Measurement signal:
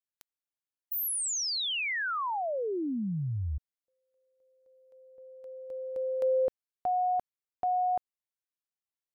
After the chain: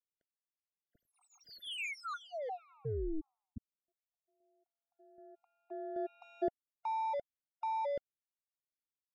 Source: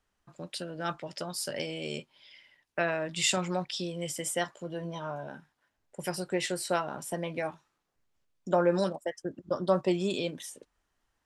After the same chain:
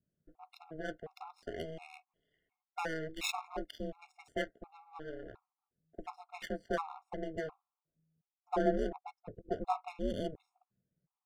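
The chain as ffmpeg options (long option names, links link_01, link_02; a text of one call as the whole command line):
ffmpeg -i in.wav -af "adynamicsmooth=sensitivity=4.5:basefreq=700,aeval=exprs='val(0)*sin(2*PI*160*n/s)':channel_layout=same,afftfilt=real='re*gt(sin(2*PI*1.4*pts/sr)*(1-2*mod(floor(b*sr/1024/710),2)),0)':imag='im*gt(sin(2*PI*1.4*pts/sr)*(1-2*mod(floor(b*sr/1024/710),2)),0)':win_size=1024:overlap=0.75,volume=-1dB" out.wav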